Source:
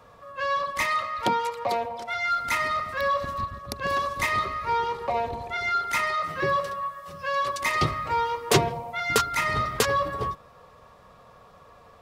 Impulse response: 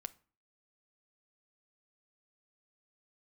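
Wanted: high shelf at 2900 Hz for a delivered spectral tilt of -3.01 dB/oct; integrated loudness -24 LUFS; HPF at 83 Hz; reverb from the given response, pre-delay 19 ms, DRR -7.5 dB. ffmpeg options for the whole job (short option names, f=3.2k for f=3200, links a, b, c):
-filter_complex "[0:a]highpass=83,highshelf=f=2.9k:g=8.5,asplit=2[a][b];[1:a]atrim=start_sample=2205,adelay=19[c];[b][c]afir=irnorm=-1:irlink=0,volume=11dB[d];[a][d]amix=inputs=2:normalize=0,volume=-7.5dB"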